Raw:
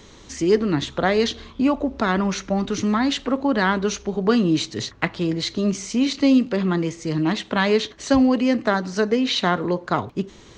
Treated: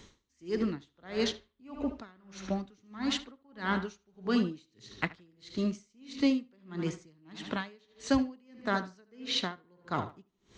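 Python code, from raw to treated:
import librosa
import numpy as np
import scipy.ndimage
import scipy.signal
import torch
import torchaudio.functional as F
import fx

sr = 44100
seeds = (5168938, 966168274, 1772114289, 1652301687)

y = fx.peak_eq(x, sr, hz=610.0, db=-4.0, octaves=1.4)
y = fx.echo_tape(y, sr, ms=74, feedback_pct=59, wet_db=-10, lp_hz=4200.0, drive_db=5.0, wow_cents=34)
y = y * 10.0 ** (-34 * (0.5 - 0.5 * np.cos(2.0 * np.pi * 1.6 * np.arange(len(y)) / sr)) / 20.0)
y = y * librosa.db_to_amplitude(-6.5)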